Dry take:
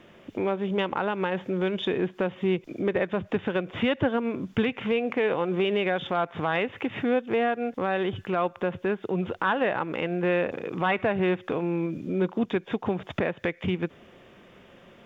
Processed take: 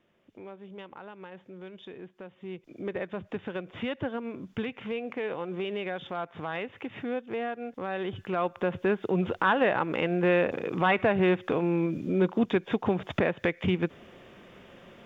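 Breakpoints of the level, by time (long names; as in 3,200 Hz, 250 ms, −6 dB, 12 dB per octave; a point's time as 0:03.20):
0:02.34 −17.5 dB
0:02.88 −8 dB
0:07.73 −8 dB
0:08.86 +1 dB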